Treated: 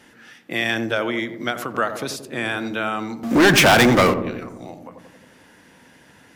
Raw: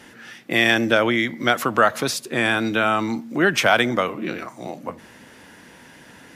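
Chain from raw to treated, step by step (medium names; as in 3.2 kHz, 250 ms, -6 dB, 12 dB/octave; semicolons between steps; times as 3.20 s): 3.23–4.14 s: waveshaping leveller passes 5; filtered feedback delay 88 ms, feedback 69%, low-pass 800 Hz, level -7.5 dB; endings held to a fixed fall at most 150 dB/s; trim -5 dB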